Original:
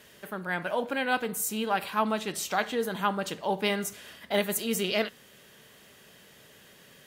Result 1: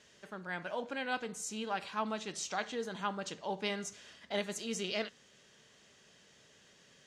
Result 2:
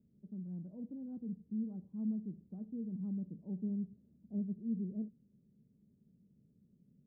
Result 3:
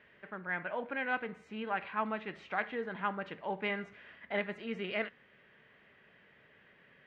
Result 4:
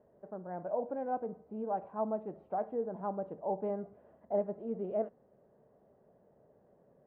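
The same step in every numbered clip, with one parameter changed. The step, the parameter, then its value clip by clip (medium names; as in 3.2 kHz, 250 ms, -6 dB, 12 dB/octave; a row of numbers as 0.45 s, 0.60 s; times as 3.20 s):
four-pole ladder low-pass, frequency: 7.5 kHz, 250 Hz, 2.5 kHz, 810 Hz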